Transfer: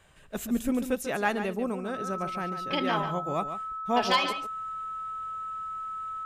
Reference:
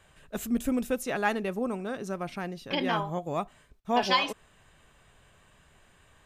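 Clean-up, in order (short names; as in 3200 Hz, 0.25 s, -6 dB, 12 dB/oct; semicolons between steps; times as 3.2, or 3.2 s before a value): clip repair -13.5 dBFS; notch 1300 Hz, Q 30; inverse comb 0.142 s -10 dB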